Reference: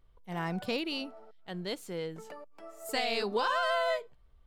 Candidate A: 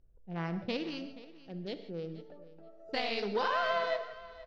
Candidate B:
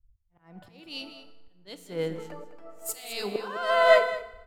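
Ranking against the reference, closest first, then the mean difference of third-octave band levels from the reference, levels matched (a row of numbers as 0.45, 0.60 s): A, B; 7.0, 10.0 dB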